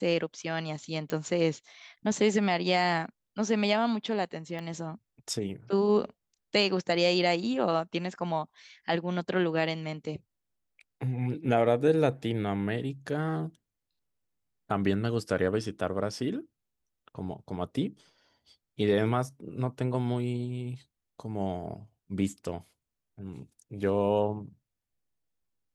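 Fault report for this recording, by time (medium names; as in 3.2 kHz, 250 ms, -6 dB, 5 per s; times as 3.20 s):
1.10 s: pop -19 dBFS
4.59 s: pop -26 dBFS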